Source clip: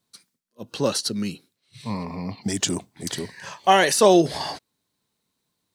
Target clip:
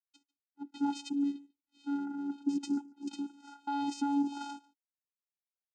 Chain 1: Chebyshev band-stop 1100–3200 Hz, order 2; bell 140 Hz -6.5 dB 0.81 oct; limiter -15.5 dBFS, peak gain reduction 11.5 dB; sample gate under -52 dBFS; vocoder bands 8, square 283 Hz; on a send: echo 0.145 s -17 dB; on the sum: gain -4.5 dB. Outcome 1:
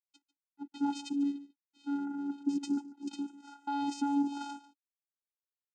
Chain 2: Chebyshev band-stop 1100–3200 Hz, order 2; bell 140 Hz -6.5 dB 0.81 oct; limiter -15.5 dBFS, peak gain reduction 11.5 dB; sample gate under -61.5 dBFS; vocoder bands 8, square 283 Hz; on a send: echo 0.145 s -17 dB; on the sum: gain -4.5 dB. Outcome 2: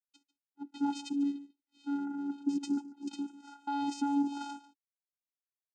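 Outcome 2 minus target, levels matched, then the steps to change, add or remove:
echo-to-direct +7 dB
change: echo 0.145 s -24 dB

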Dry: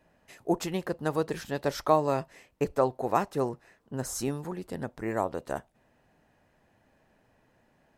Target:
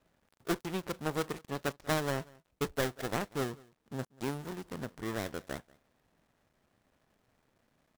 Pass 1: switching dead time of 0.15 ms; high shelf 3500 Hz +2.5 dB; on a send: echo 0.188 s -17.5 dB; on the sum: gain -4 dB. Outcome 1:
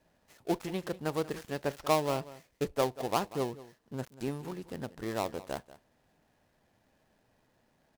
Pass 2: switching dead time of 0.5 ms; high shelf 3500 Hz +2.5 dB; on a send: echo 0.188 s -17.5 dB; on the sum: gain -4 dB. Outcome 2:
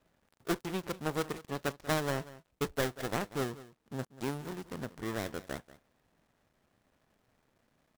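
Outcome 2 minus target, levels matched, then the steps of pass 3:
echo-to-direct +7 dB
switching dead time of 0.5 ms; high shelf 3500 Hz +2.5 dB; on a send: echo 0.188 s -24.5 dB; on the sum: gain -4 dB

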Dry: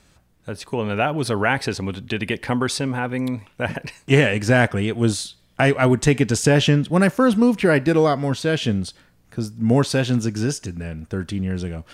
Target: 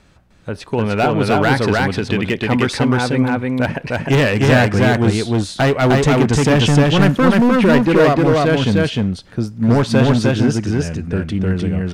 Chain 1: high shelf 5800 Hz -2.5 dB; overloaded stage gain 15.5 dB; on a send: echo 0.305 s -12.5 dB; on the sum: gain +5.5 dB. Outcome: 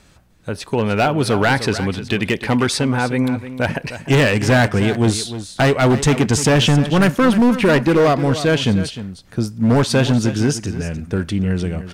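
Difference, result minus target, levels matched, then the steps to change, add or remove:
echo-to-direct -11 dB; 8000 Hz band +6.0 dB
change: high shelf 5800 Hz -14 dB; change: echo 0.305 s -1.5 dB

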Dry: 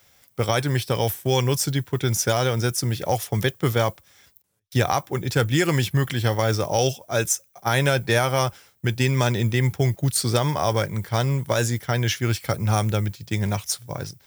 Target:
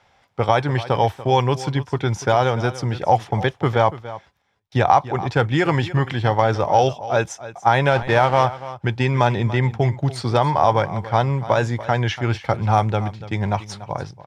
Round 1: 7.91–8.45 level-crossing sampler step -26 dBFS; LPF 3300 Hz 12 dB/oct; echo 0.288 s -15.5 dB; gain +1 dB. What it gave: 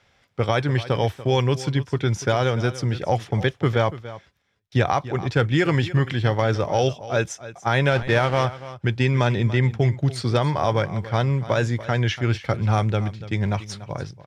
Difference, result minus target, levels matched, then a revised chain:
1000 Hz band -5.5 dB
7.91–8.45 level-crossing sampler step -26 dBFS; LPF 3300 Hz 12 dB/oct; bell 850 Hz +10.5 dB 0.79 oct; echo 0.288 s -15.5 dB; gain +1 dB

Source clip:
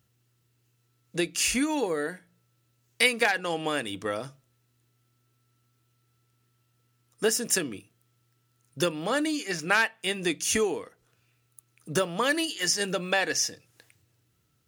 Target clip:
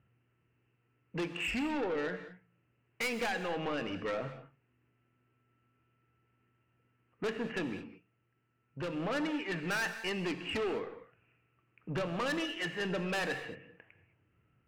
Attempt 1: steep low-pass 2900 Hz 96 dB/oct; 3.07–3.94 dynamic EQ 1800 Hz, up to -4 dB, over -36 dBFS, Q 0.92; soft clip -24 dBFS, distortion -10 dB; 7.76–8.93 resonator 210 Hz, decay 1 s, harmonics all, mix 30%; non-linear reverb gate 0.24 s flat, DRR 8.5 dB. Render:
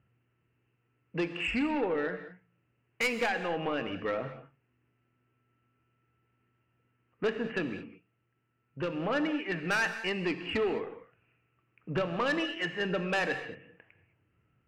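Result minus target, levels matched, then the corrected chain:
soft clip: distortion -5 dB
steep low-pass 2900 Hz 96 dB/oct; 3.07–3.94 dynamic EQ 1800 Hz, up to -4 dB, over -36 dBFS, Q 0.92; soft clip -31 dBFS, distortion -5 dB; 7.76–8.93 resonator 210 Hz, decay 1 s, harmonics all, mix 30%; non-linear reverb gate 0.24 s flat, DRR 8.5 dB

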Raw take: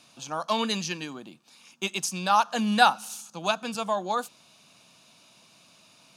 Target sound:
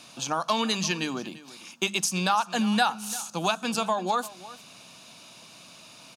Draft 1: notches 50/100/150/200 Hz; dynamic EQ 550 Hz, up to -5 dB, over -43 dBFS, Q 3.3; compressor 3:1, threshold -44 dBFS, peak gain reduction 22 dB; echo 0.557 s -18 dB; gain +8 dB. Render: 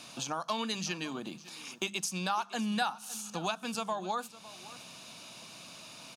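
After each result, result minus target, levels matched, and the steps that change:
echo 0.213 s late; compressor: peak gain reduction +8 dB
change: echo 0.344 s -18 dB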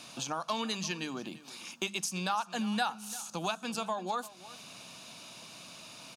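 compressor: peak gain reduction +8 dB
change: compressor 3:1, threshold -32 dBFS, peak gain reduction 14 dB

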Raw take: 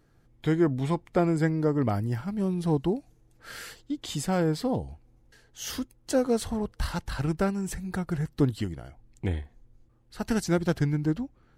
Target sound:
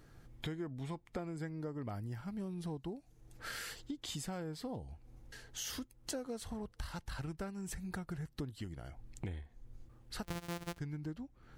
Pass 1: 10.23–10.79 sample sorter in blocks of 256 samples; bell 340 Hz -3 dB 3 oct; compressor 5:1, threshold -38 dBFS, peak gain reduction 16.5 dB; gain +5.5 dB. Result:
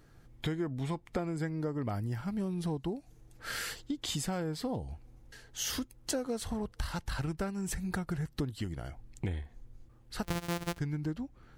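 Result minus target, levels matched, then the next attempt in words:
compressor: peak gain reduction -7 dB
10.23–10.79 sample sorter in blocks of 256 samples; bell 340 Hz -3 dB 3 oct; compressor 5:1, threshold -47 dBFS, peak gain reduction 23.5 dB; gain +5.5 dB

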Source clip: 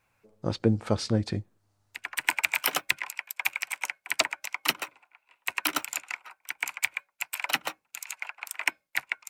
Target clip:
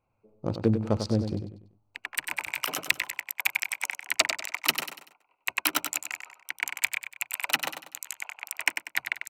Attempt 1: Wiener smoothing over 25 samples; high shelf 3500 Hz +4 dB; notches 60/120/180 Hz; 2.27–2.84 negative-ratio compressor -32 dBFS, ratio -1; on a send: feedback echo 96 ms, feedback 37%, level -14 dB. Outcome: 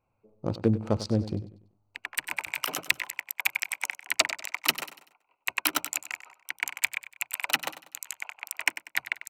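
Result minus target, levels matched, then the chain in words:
echo-to-direct -6 dB
Wiener smoothing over 25 samples; high shelf 3500 Hz +4 dB; notches 60/120/180 Hz; 2.27–2.84 negative-ratio compressor -32 dBFS, ratio -1; on a send: feedback echo 96 ms, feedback 37%, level -8 dB

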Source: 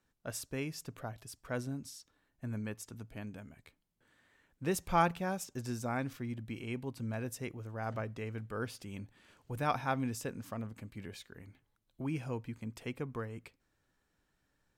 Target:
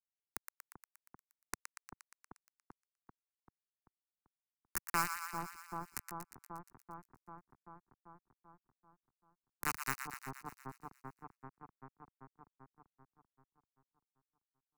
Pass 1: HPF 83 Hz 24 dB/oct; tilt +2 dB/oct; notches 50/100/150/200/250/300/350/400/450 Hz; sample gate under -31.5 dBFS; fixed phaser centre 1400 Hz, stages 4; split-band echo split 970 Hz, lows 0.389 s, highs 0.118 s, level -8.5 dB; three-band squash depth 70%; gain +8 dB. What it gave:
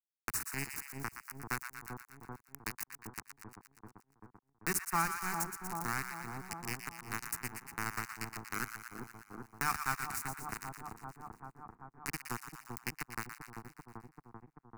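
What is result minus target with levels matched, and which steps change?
sample gate: distortion -7 dB
change: sample gate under -22 dBFS

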